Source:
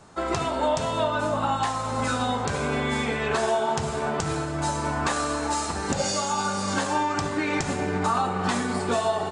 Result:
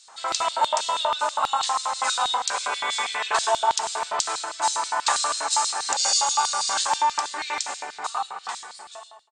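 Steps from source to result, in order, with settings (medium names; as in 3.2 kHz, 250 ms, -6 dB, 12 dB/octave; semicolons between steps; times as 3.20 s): fade out at the end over 2.54 s; brick-wall FIR low-pass 9.3 kHz; hum notches 50/100/150/200/250 Hz; LFO high-pass square 6.2 Hz 880–3900 Hz; treble shelf 4.4 kHz +9.5 dB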